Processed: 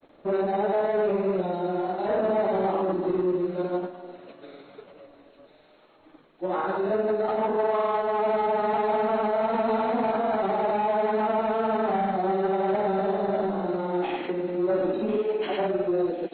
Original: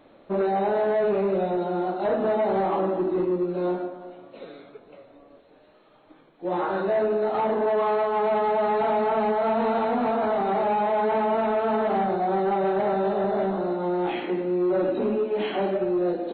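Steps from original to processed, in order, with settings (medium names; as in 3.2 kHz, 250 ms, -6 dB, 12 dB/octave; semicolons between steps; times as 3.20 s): granulator, pitch spread up and down by 0 st; feedback echo behind a high-pass 1046 ms, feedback 46%, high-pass 2.7 kHz, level -7.5 dB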